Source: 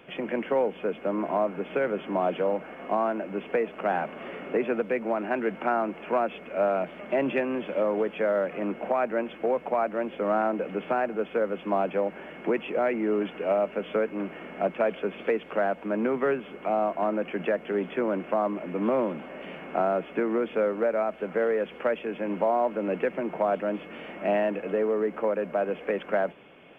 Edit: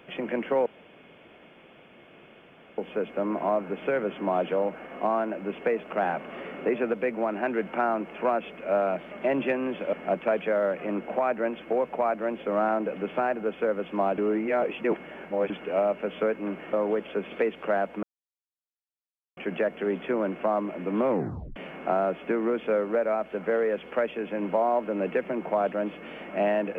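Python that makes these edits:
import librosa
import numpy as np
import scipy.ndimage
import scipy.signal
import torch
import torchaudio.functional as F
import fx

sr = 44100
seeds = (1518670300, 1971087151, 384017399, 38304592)

y = fx.edit(x, sr, fx.insert_room_tone(at_s=0.66, length_s=2.12),
    fx.swap(start_s=7.81, length_s=0.34, other_s=14.46, other_length_s=0.49),
    fx.reverse_span(start_s=11.91, length_s=1.32),
    fx.silence(start_s=15.91, length_s=1.34),
    fx.tape_stop(start_s=18.97, length_s=0.47), tone=tone)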